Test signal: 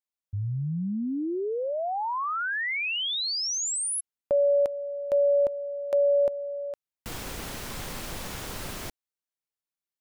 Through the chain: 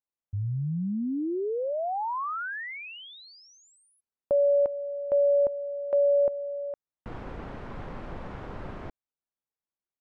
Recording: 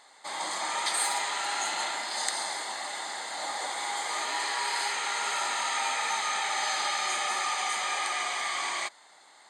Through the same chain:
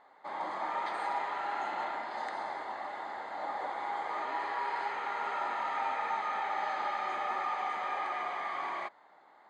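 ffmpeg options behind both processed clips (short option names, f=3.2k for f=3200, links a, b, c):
-af "lowpass=1.3k"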